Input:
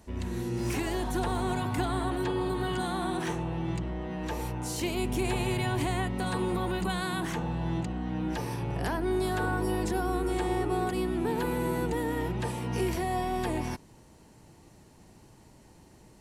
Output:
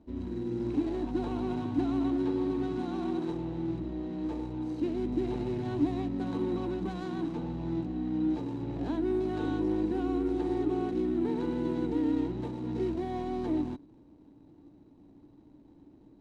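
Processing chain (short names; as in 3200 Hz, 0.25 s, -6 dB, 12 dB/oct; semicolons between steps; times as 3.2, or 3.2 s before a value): median filter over 25 samples; LPF 6800 Hz 12 dB/oct; small resonant body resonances 290/3900 Hz, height 17 dB, ringing for 60 ms; gain -7 dB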